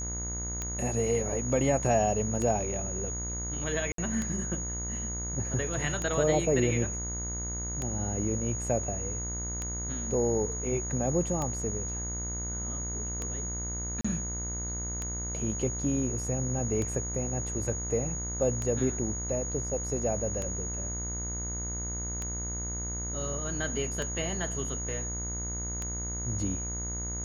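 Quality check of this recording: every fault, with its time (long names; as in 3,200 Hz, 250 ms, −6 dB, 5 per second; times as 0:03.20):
mains buzz 60 Hz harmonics 37 −37 dBFS
scratch tick 33 1/3 rpm −19 dBFS
whistle 6,700 Hz −35 dBFS
0:03.92–0:03.98: drop-out 63 ms
0:14.01–0:14.04: drop-out 35 ms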